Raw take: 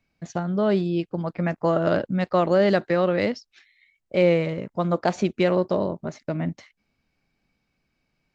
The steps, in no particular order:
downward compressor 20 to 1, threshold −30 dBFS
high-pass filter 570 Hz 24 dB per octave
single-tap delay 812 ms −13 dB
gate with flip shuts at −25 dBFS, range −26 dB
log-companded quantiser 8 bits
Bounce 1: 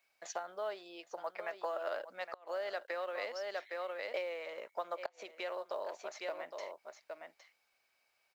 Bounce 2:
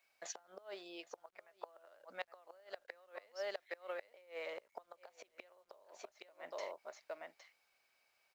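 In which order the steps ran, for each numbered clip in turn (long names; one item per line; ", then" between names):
single-tap delay, then downward compressor, then high-pass filter, then log-companded quantiser, then gate with flip
single-tap delay, then downward compressor, then gate with flip, then high-pass filter, then log-companded quantiser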